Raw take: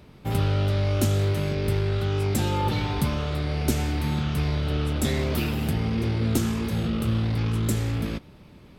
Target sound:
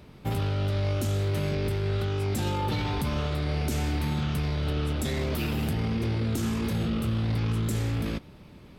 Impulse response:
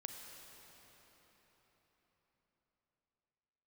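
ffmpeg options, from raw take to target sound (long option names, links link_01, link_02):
-af "alimiter=limit=-20.5dB:level=0:latency=1:release=15"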